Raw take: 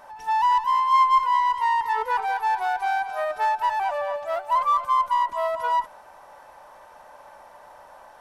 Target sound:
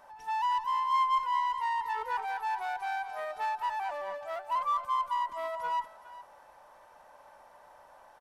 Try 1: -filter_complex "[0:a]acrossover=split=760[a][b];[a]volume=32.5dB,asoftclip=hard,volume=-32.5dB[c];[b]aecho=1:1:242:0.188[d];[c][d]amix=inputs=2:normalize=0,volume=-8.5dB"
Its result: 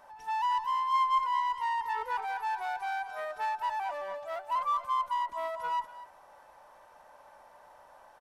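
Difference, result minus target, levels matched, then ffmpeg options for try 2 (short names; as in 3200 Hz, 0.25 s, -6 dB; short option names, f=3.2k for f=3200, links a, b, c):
echo 0.171 s early
-filter_complex "[0:a]acrossover=split=760[a][b];[a]volume=32.5dB,asoftclip=hard,volume=-32.5dB[c];[b]aecho=1:1:413:0.188[d];[c][d]amix=inputs=2:normalize=0,volume=-8.5dB"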